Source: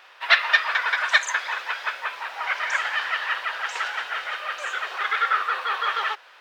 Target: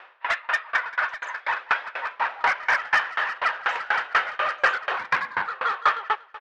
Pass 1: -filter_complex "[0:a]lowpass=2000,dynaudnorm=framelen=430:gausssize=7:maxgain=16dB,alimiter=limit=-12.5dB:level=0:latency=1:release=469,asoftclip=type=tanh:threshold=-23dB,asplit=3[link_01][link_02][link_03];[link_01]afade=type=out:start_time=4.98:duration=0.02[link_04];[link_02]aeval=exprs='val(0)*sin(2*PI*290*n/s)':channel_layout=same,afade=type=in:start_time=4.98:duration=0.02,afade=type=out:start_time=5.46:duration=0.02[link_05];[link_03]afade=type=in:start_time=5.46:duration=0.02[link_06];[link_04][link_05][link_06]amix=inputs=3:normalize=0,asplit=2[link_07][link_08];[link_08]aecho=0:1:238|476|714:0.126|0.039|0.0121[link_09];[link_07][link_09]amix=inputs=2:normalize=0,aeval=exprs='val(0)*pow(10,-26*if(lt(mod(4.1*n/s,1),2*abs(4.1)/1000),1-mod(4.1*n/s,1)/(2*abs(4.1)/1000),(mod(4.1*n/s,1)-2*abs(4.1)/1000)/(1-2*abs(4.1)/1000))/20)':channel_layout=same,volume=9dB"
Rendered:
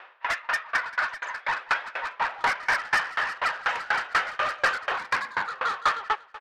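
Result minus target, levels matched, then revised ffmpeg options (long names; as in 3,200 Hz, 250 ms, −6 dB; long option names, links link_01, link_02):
soft clipping: distortion +7 dB
-filter_complex "[0:a]lowpass=2000,dynaudnorm=framelen=430:gausssize=7:maxgain=16dB,alimiter=limit=-12.5dB:level=0:latency=1:release=469,asoftclip=type=tanh:threshold=-16.5dB,asplit=3[link_01][link_02][link_03];[link_01]afade=type=out:start_time=4.98:duration=0.02[link_04];[link_02]aeval=exprs='val(0)*sin(2*PI*290*n/s)':channel_layout=same,afade=type=in:start_time=4.98:duration=0.02,afade=type=out:start_time=5.46:duration=0.02[link_05];[link_03]afade=type=in:start_time=5.46:duration=0.02[link_06];[link_04][link_05][link_06]amix=inputs=3:normalize=0,asplit=2[link_07][link_08];[link_08]aecho=0:1:238|476|714:0.126|0.039|0.0121[link_09];[link_07][link_09]amix=inputs=2:normalize=0,aeval=exprs='val(0)*pow(10,-26*if(lt(mod(4.1*n/s,1),2*abs(4.1)/1000),1-mod(4.1*n/s,1)/(2*abs(4.1)/1000),(mod(4.1*n/s,1)-2*abs(4.1)/1000)/(1-2*abs(4.1)/1000))/20)':channel_layout=same,volume=9dB"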